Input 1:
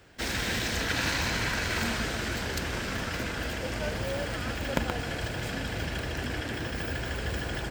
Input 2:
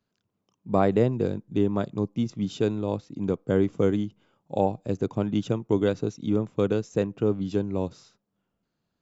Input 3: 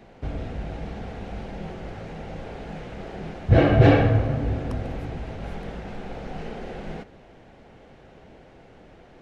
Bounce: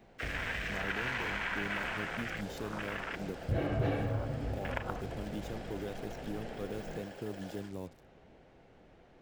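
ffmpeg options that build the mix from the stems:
ffmpeg -i stem1.wav -i stem2.wav -i stem3.wav -filter_complex "[0:a]afwtdn=0.0251,highpass=690,volume=-1dB[link_01];[1:a]acrusher=bits=6:mix=0:aa=0.5,alimiter=limit=-16.5dB:level=0:latency=1,highshelf=frequency=5900:gain=7,volume=-13.5dB[link_02];[2:a]volume=-10dB[link_03];[link_01][link_02][link_03]amix=inputs=3:normalize=0,acompressor=threshold=-33dB:ratio=2" out.wav

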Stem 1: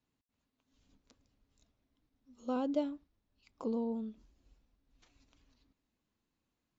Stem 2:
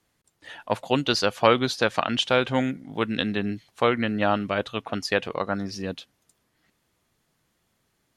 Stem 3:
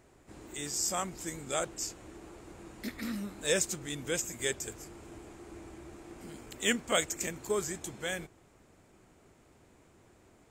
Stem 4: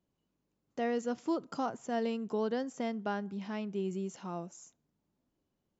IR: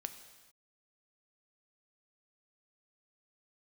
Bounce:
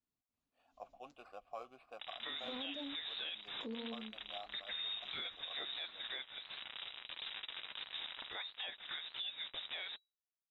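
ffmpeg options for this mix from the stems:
-filter_complex "[0:a]alimiter=level_in=6dB:limit=-24dB:level=0:latency=1,volume=-6dB,volume=-8dB[link_01];[1:a]highshelf=frequency=3700:gain=-7.5,acrusher=samples=7:mix=1:aa=0.000001,asplit=3[link_02][link_03][link_04];[link_02]bandpass=frequency=730:width_type=q:width=8,volume=0dB[link_05];[link_03]bandpass=frequency=1090:width_type=q:width=8,volume=-6dB[link_06];[link_04]bandpass=frequency=2440:width_type=q:width=8,volume=-9dB[link_07];[link_05][link_06][link_07]amix=inputs=3:normalize=0,adelay=100,volume=-18.5dB[link_08];[2:a]acontrast=77,acrusher=bits=5:mix=0:aa=0.000001,adelay=1700,volume=-2dB,lowpass=frequency=3300:width_type=q:width=0.5098,lowpass=frequency=3300:width_type=q:width=0.6013,lowpass=frequency=3300:width_type=q:width=0.9,lowpass=frequency=3300:width_type=q:width=2.563,afreqshift=-3900,acompressor=threshold=-41dB:ratio=2.5,volume=0dB[link_09];[link_01][link_08][link_09]amix=inputs=3:normalize=0,dynaudnorm=framelen=120:gausssize=7:maxgain=6dB,flanger=delay=3.5:depth=5.2:regen=-60:speed=1.5:shape=sinusoidal,alimiter=level_in=9.5dB:limit=-24dB:level=0:latency=1:release=247,volume=-9.5dB"

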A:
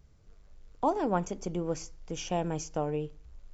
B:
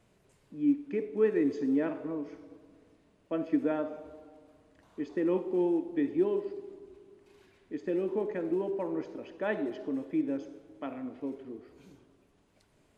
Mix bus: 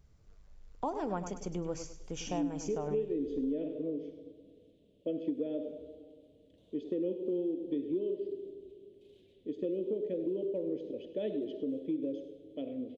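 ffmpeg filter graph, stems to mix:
ffmpeg -i stem1.wav -i stem2.wav -filter_complex "[0:a]volume=-3.5dB,asplit=2[link_01][link_02];[link_02]volume=-11dB[link_03];[1:a]firequalizer=gain_entry='entry(350,0);entry(520,6);entry(820,-20);entry(1300,-26);entry(3300,8);entry(4800,-7)':delay=0.05:min_phase=1,equalizer=frequency=280:width=0.35:gain=4,adelay=1750,volume=-4dB,asplit=2[link_04][link_05];[link_05]volume=-14.5dB[link_06];[link_03][link_06]amix=inputs=2:normalize=0,aecho=0:1:101|202|303|404|505:1|0.33|0.109|0.0359|0.0119[link_07];[link_01][link_04][link_07]amix=inputs=3:normalize=0,acompressor=threshold=-31dB:ratio=4" out.wav

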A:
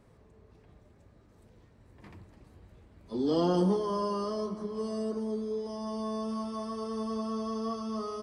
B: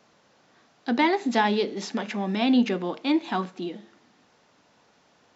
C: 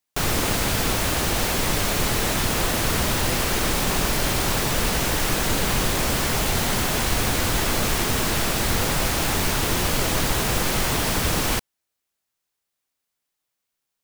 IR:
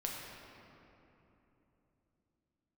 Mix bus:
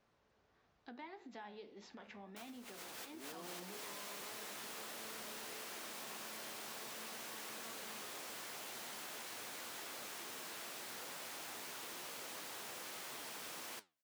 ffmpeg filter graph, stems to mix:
-filter_complex "[0:a]volume=-16dB[link_01];[1:a]lowpass=frequency=2600:poles=1,bandreject=frequency=176.4:width_type=h:width=4,bandreject=frequency=352.8:width_type=h:width=4,bandreject=frequency=529.2:width_type=h:width=4,bandreject=frequency=705.6:width_type=h:width=4,bandreject=frequency=882:width_type=h:width=4,bandreject=frequency=1058.4:width_type=h:width=4,bandreject=frequency=1234.8:width_type=h:width=4,bandreject=frequency=1411.2:width_type=h:width=4,bandreject=frequency=1587.6:width_type=h:width=4,bandreject=frequency=1764:width_type=h:width=4,bandreject=frequency=1940.4:width_type=h:width=4,bandreject=frequency=2116.8:width_type=h:width=4,bandreject=frequency=2293.2:width_type=h:width=4,bandreject=frequency=2469.6:width_type=h:width=4,bandreject=frequency=2646:width_type=h:width=4,bandreject=frequency=2822.4:width_type=h:width=4,bandreject=frequency=2998.8:width_type=h:width=4,bandreject=frequency=3175.2:width_type=h:width=4,bandreject=frequency=3351.6:width_type=h:width=4,bandreject=frequency=3528:width_type=h:width=4,bandreject=frequency=3704.4:width_type=h:width=4,bandreject=frequency=3880.8:width_type=h:width=4,bandreject=frequency=4057.2:width_type=h:width=4,bandreject=frequency=4233.6:width_type=h:width=4,bandreject=frequency=4410:width_type=h:width=4,bandreject=frequency=4586.4:width_type=h:width=4,bandreject=frequency=4762.8:width_type=h:width=4,bandreject=frequency=4939.2:width_type=h:width=4,bandreject=frequency=5115.6:width_type=h:width=4,volume=-9dB,asplit=2[link_02][link_03];[2:a]highpass=250,adelay=2200,volume=-2.5dB[link_04];[link_03]apad=whole_len=715879[link_05];[link_04][link_05]sidechaincompress=threshold=-47dB:ratio=5:attack=10:release=101[link_06];[link_02][link_06]amix=inputs=2:normalize=0,flanger=delay=7.6:depth=9.4:regen=69:speed=1.6:shape=triangular,acompressor=threshold=-43dB:ratio=2.5,volume=0dB[link_07];[link_01][link_07]amix=inputs=2:normalize=0,lowshelf=frequency=390:gain=-8.5,acompressor=threshold=-57dB:ratio=1.5"

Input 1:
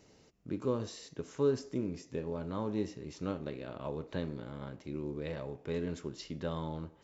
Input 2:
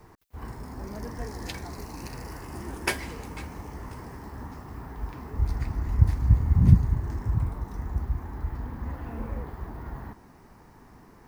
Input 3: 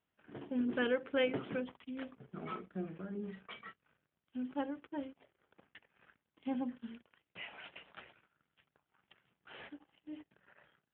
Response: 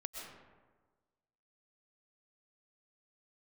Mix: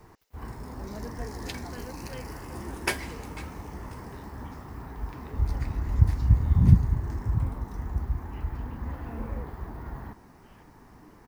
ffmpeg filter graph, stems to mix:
-filter_complex "[0:a]highpass=810,volume=-11dB[link_01];[1:a]volume=-0.5dB[link_02];[2:a]adelay=950,volume=-12.5dB[link_03];[link_01][link_02][link_03]amix=inputs=3:normalize=0"

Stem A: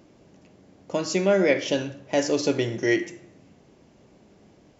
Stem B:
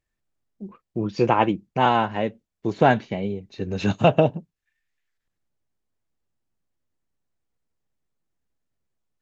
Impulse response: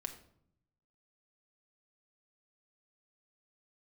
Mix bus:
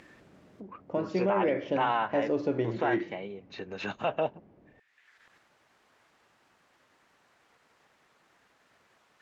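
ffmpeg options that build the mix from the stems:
-filter_complex "[0:a]lowpass=1500,volume=-4dB[link_01];[1:a]acompressor=mode=upward:threshold=-20dB:ratio=2.5,bandpass=frequency=1400:width_type=q:width=0.81:csg=0,volume=-3dB[link_02];[link_01][link_02]amix=inputs=2:normalize=0,alimiter=limit=-18dB:level=0:latency=1:release=25"

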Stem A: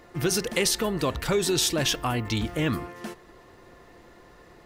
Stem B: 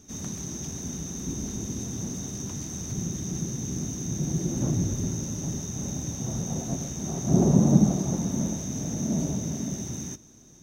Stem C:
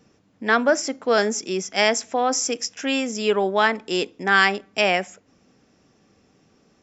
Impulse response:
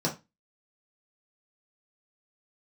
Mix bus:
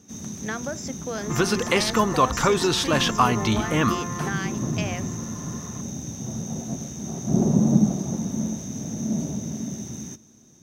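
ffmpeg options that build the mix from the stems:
-filter_complex "[0:a]acrossover=split=5600[link_01][link_02];[link_02]acompressor=threshold=-39dB:ratio=4:attack=1:release=60[link_03];[link_01][link_03]amix=inputs=2:normalize=0,equalizer=frequency=1100:width=1.7:gain=11.5,adelay=1150,volume=2dB[link_04];[1:a]highpass=72,volume=-1.5dB[link_05];[2:a]acompressor=threshold=-23dB:ratio=4,volume=-6.5dB[link_06];[link_04][link_05][link_06]amix=inputs=3:normalize=0,equalizer=frequency=220:width=7.4:gain=6"

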